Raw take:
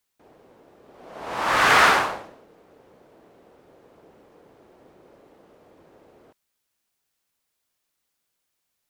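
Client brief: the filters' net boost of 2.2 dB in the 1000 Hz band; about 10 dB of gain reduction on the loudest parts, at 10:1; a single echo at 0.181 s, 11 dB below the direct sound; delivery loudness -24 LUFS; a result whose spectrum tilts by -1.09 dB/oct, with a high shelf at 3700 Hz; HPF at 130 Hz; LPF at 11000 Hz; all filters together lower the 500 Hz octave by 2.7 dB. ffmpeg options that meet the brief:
-af "highpass=130,lowpass=11k,equalizer=f=500:t=o:g=-5,equalizer=f=1k:t=o:g=3.5,highshelf=f=3.7k:g=4.5,acompressor=threshold=-20dB:ratio=10,aecho=1:1:181:0.282,volume=1dB"

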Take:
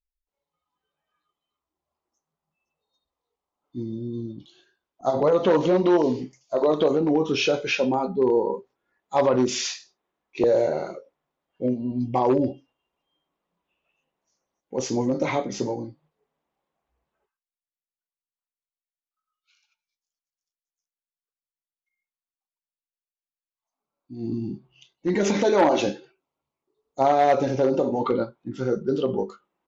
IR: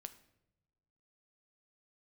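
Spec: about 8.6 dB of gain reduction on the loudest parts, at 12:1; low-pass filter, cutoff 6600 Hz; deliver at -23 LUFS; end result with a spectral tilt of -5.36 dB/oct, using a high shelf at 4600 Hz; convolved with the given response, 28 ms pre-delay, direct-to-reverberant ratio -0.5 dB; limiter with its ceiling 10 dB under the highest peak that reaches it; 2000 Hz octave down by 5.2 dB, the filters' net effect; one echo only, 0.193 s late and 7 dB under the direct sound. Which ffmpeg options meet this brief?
-filter_complex "[0:a]lowpass=6.6k,equalizer=f=2k:t=o:g=-6,highshelf=f=4.6k:g=-4,acompressor=threshold=-24dB:ratio=12,alimiter=limit=-24dB:level=0:latency=1,aecho=1:1:193:0.447,asplit=2[a][b];[1:a]atrim=start_sample=2205,adelay=28[c];[b][c]afir=irnorm=-1:irlink=0,volume=6dB[d];[a][d]amix=inputs=2:normalize=0,volume=6.5dB"

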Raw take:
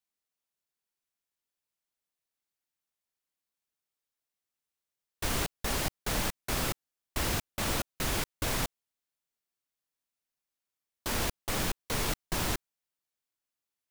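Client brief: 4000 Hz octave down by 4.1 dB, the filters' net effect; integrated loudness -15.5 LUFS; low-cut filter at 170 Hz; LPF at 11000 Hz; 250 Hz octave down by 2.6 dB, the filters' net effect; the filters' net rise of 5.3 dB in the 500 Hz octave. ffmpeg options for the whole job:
-af "highpass=170,lowpass=11k,equalizer=f=250:t=o:g=-5,equalizer=f=500:t=o:g=8,equalizer=f=4k:t=o:g=-5.5,volume=19dB"

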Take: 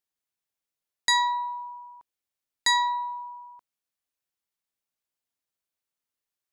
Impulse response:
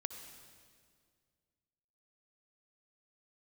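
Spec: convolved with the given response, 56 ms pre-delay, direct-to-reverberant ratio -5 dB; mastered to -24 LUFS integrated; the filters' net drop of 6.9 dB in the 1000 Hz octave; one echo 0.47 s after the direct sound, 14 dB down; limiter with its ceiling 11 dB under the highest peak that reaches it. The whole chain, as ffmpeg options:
-filter_complex "[0:a]equalizer=f=1k:t=o:g=-7,alimiter=level_in=2dB:limit=-24dB:level=0:latency=1,volume=-2dB,aecho=1:1:470:0.2,asplit=2[a][b];[1:a]atrim=start_sample=2205,adelay=56[c];[b][c]afir=irnorm=-1:irlink=0,volume=6.5dB[d];[a][d]amix=inputs=2:normalize=0,volume=6.5dB"

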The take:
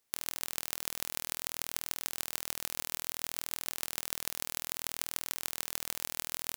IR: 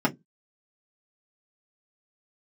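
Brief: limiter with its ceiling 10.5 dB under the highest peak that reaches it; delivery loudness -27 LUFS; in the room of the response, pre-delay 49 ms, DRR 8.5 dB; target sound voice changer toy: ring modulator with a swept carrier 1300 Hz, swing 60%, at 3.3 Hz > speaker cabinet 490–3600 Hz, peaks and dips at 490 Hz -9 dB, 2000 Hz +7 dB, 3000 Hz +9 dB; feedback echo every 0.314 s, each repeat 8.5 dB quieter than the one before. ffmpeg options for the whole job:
-filter_complex "[0:a]alimiter=limit=-14.5dB:level=0:latency=1,aecho=1:1:314|628|942|1256:0.376|0.143|0.0543|0.0206,asplit=2[a][b];[1:a]atrim=start_sample=2205,adelay=49[c];[b][c]afir=irnorm=-1:irlink=0,volume=-21.5dB[d];[a][d]amix=inputs=2:normalize=0,aeval=exprs='val(0)*sin(2*PI*1300*n/s+1300*0.6/3.3*sin(2*PI*3.3*n/s))':c=same,highpass=490,equalizer=f=490:t=q:w=4:g=-9,equalizer=f=2k:t=q:w=4:g=7,equalizer=f=3k:t=q:w=4:g=9,lowpass=f=3.6k:w=0.5412,lowpass=f=3.6k:w=1.3066,volume=20.5dB"

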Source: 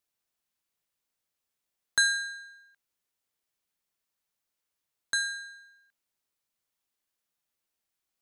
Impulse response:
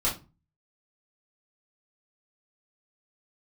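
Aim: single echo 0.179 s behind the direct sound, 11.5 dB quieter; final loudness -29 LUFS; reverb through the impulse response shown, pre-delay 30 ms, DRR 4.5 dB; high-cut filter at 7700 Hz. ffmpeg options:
-filter_complex "[0:a]lowpass=7.7k,aecho=1:1:179:0.266,asplit=2[a][b];[1:a]atrim=start_sample=2205,adelay=30[c];[b][c]afir=irnorm=-1:irlink=0,volume=-13.5dB[d];[a][d]amix=inputs=2:normalize=0"

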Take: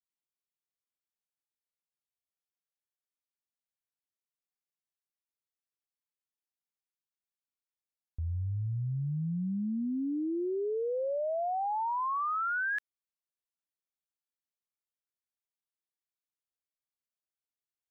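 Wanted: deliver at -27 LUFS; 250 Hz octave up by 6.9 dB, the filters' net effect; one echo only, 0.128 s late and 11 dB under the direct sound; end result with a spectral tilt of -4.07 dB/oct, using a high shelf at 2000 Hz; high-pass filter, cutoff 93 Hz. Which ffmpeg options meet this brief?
-af "highpass=93,equalizer=f=250:t=o:g=9,highshelf=f=2k:g=3.5,aecho=1:1:128:0.282,volume=2dB"

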